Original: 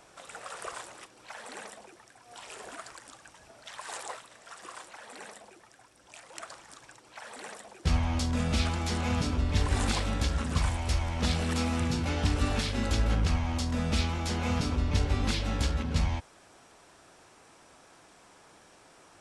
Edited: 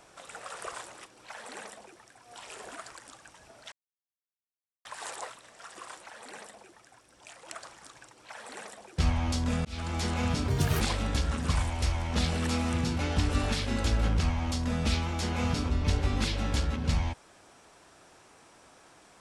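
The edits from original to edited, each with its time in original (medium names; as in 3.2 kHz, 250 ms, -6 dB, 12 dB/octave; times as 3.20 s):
3.72 s: insert silence 1.13 s
8.52–8.83 s: fade in
9.35–9.87 s: speed 161%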